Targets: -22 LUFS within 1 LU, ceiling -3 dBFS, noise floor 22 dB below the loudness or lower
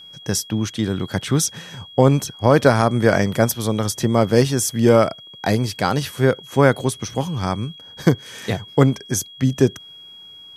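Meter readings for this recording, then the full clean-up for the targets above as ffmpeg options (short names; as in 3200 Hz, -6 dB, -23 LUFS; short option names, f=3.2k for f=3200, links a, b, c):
steady tone 3300 Hz; tone level -39 dBFS; loudness -19.5 LUFS; peak -1.0 dBFS; loudness target -22.0 LUFS
-> -af "bandreject=f=3.3k:w=30"
-af "volume=-2.5dB"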